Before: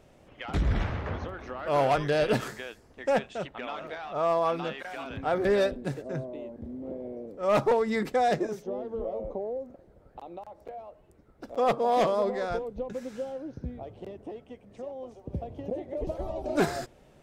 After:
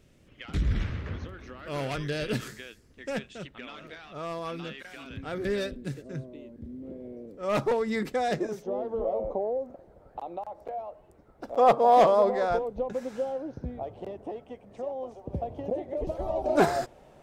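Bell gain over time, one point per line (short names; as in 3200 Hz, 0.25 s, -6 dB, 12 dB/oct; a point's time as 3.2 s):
bell 780 Hz 1.4 oct
6.69 s -14 dB
7.61 s -4.5 dB
8.31 s -4.5 dB
8.85 s +7 dB
15.59 s +7 dB
16.15 s +0.5 dB
16.33 s +7.5 dB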